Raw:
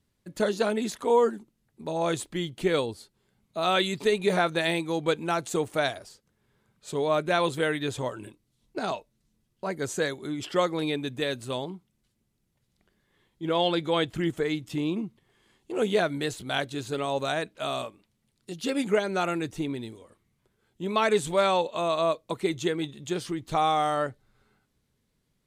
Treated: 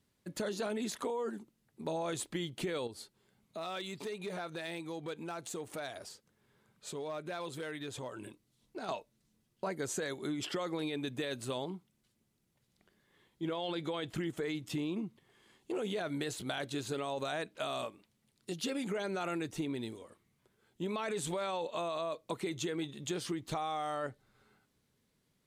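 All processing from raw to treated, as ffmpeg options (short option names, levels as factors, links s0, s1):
-filter_complex "[0:a]asettb=1/sr,asplit=3[s0][s1][s2];[s0]atrim=end=2.874[s3];[s1]atrim=start=2.87:end=8.89,asetpts=PTS-STARTPTS,afade=t=in:d=0.004:c=qsin,afade=t=out:st=6.016:d=0.004:c=qsin,acompressor=threshold=0.00891:ratio=3:attack=3.2:release=140:knee=1:detection=peak,volume=44.7,asoftclip=hard,volume=0.0224[s4];[s2]atrim=start=8.886[s5];[s3][s4]acrossfade=d=0.004:c1=hsin:c2=qsin[s6];[s6][s5]acrossfade=d=0.004:c1=qsin:c2=hsin,lowshelf=f=74:g=-12,alimiter=limit=0.075:level=0:latency=1:release=15,acompressor=threshold=0.0224:ratio=6"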